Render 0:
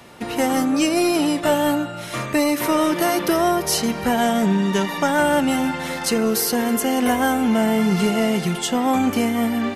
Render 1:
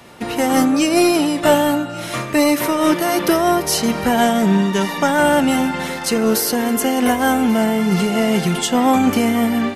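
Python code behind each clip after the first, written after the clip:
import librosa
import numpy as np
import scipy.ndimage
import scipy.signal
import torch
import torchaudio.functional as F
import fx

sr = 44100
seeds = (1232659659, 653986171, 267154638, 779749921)

y = x + 10.0 ** (-21.0 / 20.0) * np.pad(x, (int(1133 * sr / 1000.0), 0))[:len(x)]
y = fx.am_noise(y, sr, seeds[0], hz=5.7, depth_pct=55)
y = y * 10.0 ** (6.0 / 20.0)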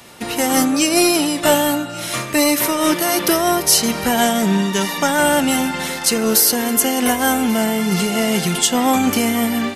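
y = fx.high_shelf(x, sr, hz=3000.0, db=10.0)
y = y * 10.0 ** (-2.0 / 20.0)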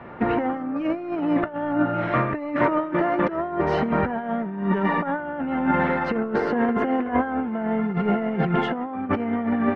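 y = scipy.signal.sosfilt(scipy.signal.butter(4, 1700.0, 'lowpass', fs=sr, output='sos'), x)
y = fx.over_compress(y, sr, threshold_db=-22.0, ratio=-0.5)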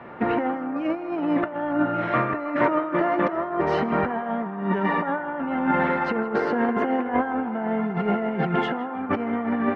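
y = fx.low_shelf(x, sr, hz=100.0, db=-11.0)
y = fx.echo_banded(y, sr, ms=161, feedback_pct=83, hz=1000.0, wet_db=-12)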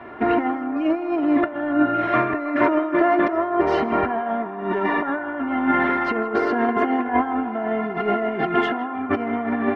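y = x + 0.7 * np.pad(x, (int(2.9 * sr / 1000.0), 0))[:len(x)]
y = y * 10.0 ** (1.0 / 20.0)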